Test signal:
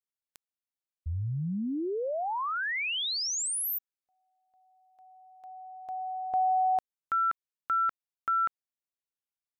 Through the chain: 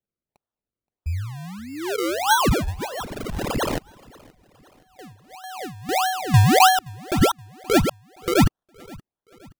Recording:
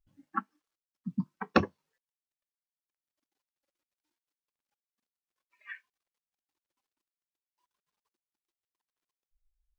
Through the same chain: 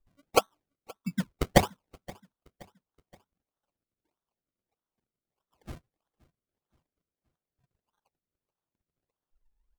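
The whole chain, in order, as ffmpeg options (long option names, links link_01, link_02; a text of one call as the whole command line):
ffmpeg -i in.wav -filter_complex "[0:a]aphaser=in_gain=1:out_gain=1:delay=1.6:decay=0.48:speed=1:type=sinusoidal,equalizer=frequency=125:width_type=o:width=1:gain=-9,equalizer=frequency=250:width_type=o:width=1:gain=-7,equalizer=frequency=500:width_type=o:width=1:gain=-4,equalizer=frequency=1000:width_type=o:width=1:gain=10,equalizer=frequency=2000:width_type=o:width=1:gain=-5,equalizer=frequency=4000:width_type=o:width=1:gain=-10,acrusher=samples=35:mix=1:aa=0.000001:lfo=1:lforange=35:lforate=1.6,agate=range=-6dB:threshold=-51dB:ratio=3:release=91:detection=rms,asplit=2[link_01][link_02];[link_02]aecho=0:1:523|1046|1569:0.0631|0.0297|0.0139[link_03];[link_01][link_03]amix=inputs=2:normalize=0,volume=6.5dB" out.wav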